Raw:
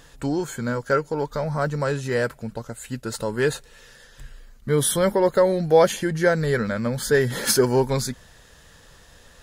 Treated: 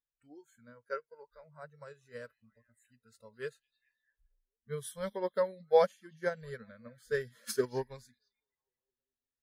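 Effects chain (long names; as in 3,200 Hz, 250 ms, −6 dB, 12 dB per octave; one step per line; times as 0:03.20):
echo through a band-pass that steps 216 ms, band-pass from 3,700 Hz, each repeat −0.7 octaves, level −11.5 dB
noise reduction from a noise print of the clip's start 21 dB
expander for the loud parts 2.5 to 1, over −28 dBFS
level −7 dB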